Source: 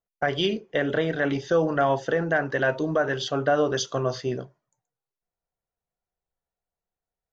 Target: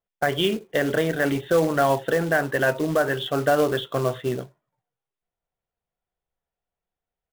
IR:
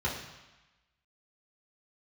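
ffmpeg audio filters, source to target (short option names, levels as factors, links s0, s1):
-af "aresample=8000,aresample=44100,acrusher=bits=4:mode=log:mix=0:aa=0.000001,volume=1.26"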